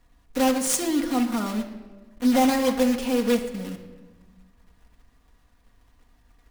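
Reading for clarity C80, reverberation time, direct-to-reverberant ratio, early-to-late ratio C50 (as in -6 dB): 11.0 dB, 1.3 s, 2.0 dB, 9.0 dB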